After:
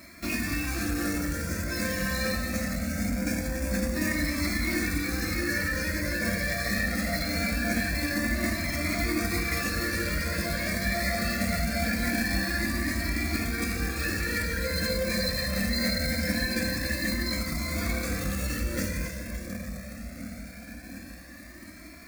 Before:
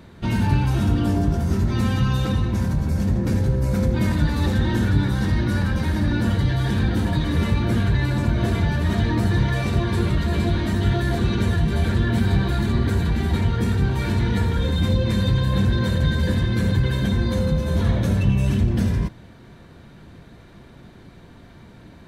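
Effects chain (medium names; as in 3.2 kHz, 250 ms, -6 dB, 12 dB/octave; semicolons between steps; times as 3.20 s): frequency weighting D; two-band feedback delay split 440 Hz, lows 709 ms, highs 285 ms, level -8 dB; on a send at -14.5 dB: reverberation RT60 1.7 s, pre-delay 28 ms; on the sum: companded quantiser 4-bit; peaking EQ 60 Hz +5.5 dB 0.84 oct; static phaser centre 600 Hz, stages 8; formant shift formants +2 st; in parallel at -2.5 dB: compression, threshold -35 dBFS, peak gain reduction 15 dB; on the sum: Shepard-style flanger rising 0.23 Hz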